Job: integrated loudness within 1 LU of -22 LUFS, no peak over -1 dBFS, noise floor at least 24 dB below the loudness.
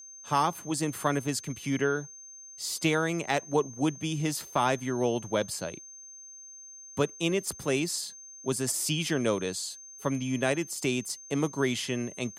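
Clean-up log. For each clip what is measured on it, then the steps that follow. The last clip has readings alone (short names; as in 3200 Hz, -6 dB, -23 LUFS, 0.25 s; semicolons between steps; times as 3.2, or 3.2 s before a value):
steady tone 6300 Hz; tone level -45 dBFS; loudness -30.0 LUFS; peak -13.0 dBFS; loudness target -22.0 LUFS
-> notch 6300 Hz, Q 30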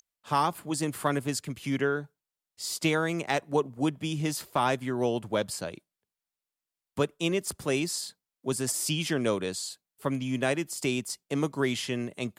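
steady tone none; loudness -30.0 LUFS; peak -13.0 dBFS; loudness target -22.0 LUFS
-> gain +8 dB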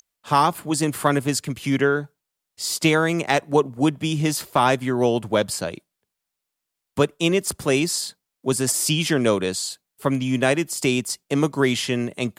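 loudness -22.0 LUFS; peak -5.0 dBFS; noise floor -83 dBFS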